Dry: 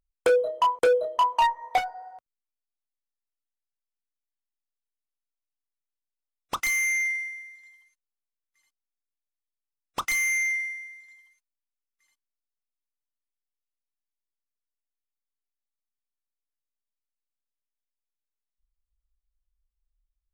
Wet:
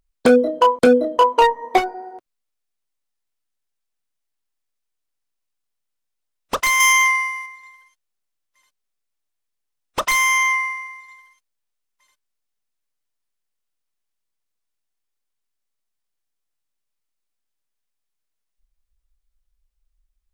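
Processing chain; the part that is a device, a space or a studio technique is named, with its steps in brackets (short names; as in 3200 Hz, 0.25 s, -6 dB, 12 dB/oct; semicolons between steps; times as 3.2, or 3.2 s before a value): 6.8–7.46 tilt +2.5 dB/oct; octave pedal (harmoniser -12 st -4 dB); gain +6.5 dB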